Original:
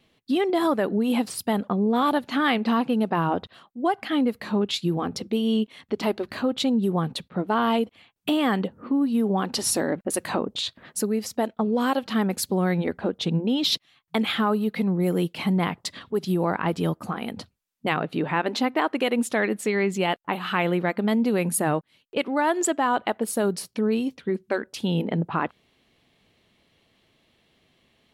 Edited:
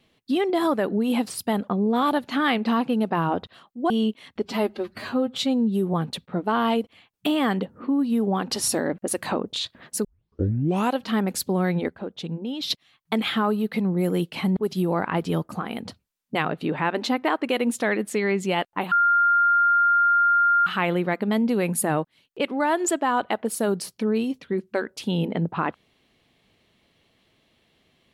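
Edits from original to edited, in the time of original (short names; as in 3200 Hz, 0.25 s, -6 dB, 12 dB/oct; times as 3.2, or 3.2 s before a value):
3.9–5.43 cut
5.95–6.96 stretch 1.5×
11.07 tape start 0.91 s
12.91–13.73 gain -7 dB
15.59–16.08 cut
20.43 add tone 1400 Hz -15.5 dBFS 1.75 s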